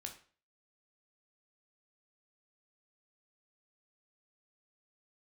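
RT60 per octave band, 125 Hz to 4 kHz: 0.40, 0.40, 0.45, 0.40, 0.40, 0.35 seconds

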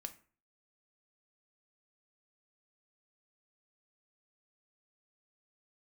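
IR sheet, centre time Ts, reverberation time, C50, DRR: 6 ms, 0.40 s, 15.0 dB, 7.0 dB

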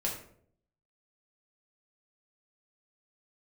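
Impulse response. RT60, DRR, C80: 0.60 s, −3.0 dB, 9.5 dB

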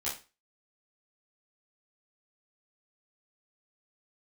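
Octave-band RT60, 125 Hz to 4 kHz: 0.30, 0.30, 0.30, 0.30, 0.30, 0.30 seconds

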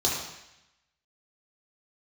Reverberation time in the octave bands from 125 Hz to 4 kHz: 0.95, 0.85, 0.80, 0.90, 1.0, 0.95 seconds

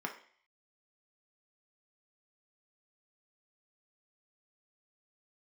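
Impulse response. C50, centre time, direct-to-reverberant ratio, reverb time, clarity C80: 10.0 dB, 14 ms, 2.0 dB, 0.50 s, 14.0 dB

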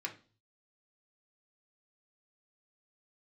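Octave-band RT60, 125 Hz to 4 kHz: 0.80, 0.45, 0.40, 0.35, 0.35, 0.40 seconds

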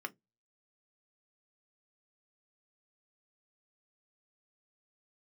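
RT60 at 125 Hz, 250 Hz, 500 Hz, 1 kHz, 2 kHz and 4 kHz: 0.35, 0.20, 0.20, 0.10, 0.10, 0.10 seconds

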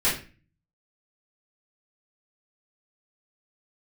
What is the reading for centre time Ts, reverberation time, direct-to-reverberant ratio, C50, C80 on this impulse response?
35 ms, 0.35 s, −12.5 dB, 5.5 dB, 11.5 dB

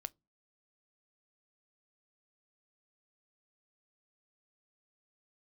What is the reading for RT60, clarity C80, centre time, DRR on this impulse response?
non-exponential decay, 40.5 dB, 2 ms, 16.0 dB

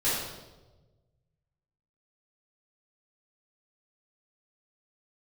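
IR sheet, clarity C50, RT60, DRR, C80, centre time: −0.5 dB, 1.2 s, −11.5 dB, 2.5 dB, 77 ms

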